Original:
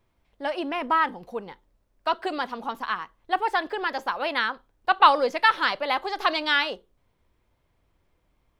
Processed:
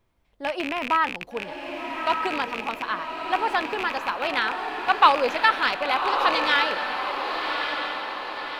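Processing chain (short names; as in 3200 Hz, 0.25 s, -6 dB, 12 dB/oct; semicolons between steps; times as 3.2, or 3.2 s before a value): rattling part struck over -44 dBFS, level -17 dBFS; diffused feedback echo 1.168 s, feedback 53%, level -5 dB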